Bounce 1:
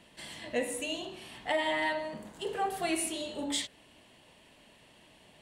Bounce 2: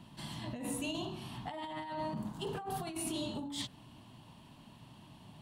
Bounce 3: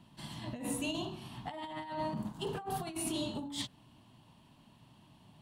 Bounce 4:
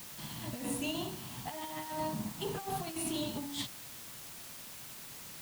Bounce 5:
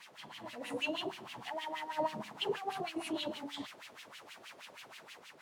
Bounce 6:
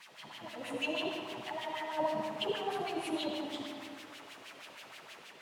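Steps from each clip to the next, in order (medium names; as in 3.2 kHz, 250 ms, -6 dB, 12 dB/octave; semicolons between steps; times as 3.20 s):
graphic EQ 125/250/500/1000/2000/8000 Hz +12/+4/-12/+7/-12/-8 dB; compressor with a negative ratio -39 dBFS, ratio -1
upward expansion 1.5:1, over -51 dBFS; trim +2.5 dB
word length cut 8-bit, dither triangular
level rider gain up to 4 dB; LFO band-pass sine 6.3 Hz 430–2900 Hz; trim +5 dB
reverberation RT60 2.1 s, pre-delay 35 ms, DRR 2.5 dB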